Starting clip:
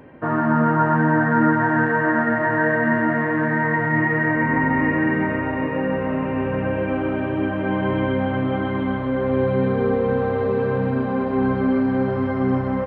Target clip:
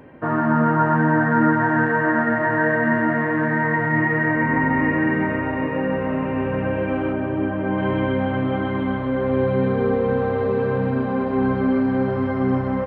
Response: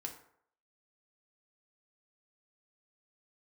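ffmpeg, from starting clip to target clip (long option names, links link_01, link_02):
-filter_complex "[0:a]asettb=1/sr,asplit=3[link_01][link_02][link_03];[link_01]atrim=end=7.124[link_04];[link_02]atrim=start=7.12:end=7.78,asetpts=PTS-STARTPTS,afade=type=in:duration=0.004:curve=qsin,afade=type=out:start_time=0.656:duration=0.004:curve=qsin,lowpass=frequency=1800:poles=1[link_05];[link_03]atrim=start=7.776[link_06];[link_04][link_05]acrossfade=duration=0.004:curve1=hsin:curve2=qsin[link_07];[link_07][link_06]acrossfade=duration=0.004:curve1=qsin:curve2=hsin"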